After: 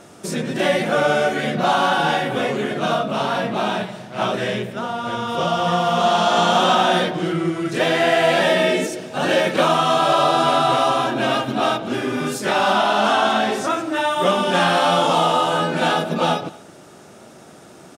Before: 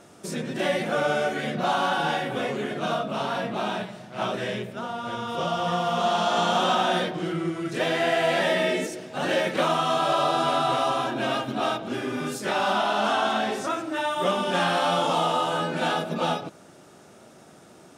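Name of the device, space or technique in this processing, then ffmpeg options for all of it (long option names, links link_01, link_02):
ducked delay: -filter_complex "[0:a]asettb=1/sr,asplit=3[link_01][link_02][link_03];[link_01]atrim=end=8.324[link_04];[link_02]atrim=start=8.32:end=9.74,asetpts=PTS-STARTPTS,afade=type=in:duration=0.004:curve=qsin,afade=type=out:start_time=1.416:duration=0.004:curve=qsin,bandreject=frequency=2000:width=13[link_05];[link_03]atrim=start=9.736[link_06];[link_04][link_05]acrossfade=duration=0.004:curve1=hsin:curve2=qsin[link_07];[link_07][link_06]acrossfade=duration=0.004:curve1=qsin:curve2=hsin,asplit=3[link_08][link_09][link_10];[link_09]adelay=223,volume=-7.5dB[link_11];[link_10]apad=whole_len=802320[link_12];[link_11][link_12]sidechaincompress=threshold=-43dB:ratio=4:attack=16:release=1100[link_13];[link_08][link_13]amix=inputs=2:normalize=0,volume=6.5dB"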